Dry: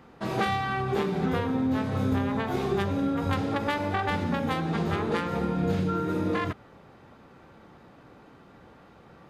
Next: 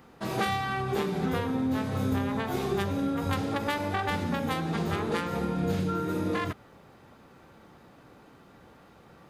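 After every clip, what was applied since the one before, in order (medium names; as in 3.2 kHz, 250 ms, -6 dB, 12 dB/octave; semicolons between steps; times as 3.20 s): treble shelf 6.6 kHz +11.5 dB; trim -2 dB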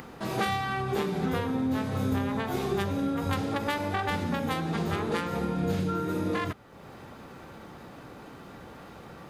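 upward compressor, threshold -36 dBFS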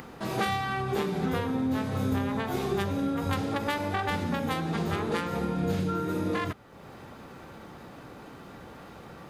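no audible change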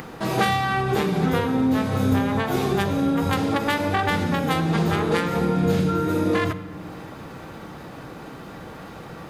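simulated room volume 3700 m³, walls mixed, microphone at 0.6 m; trim +7 dB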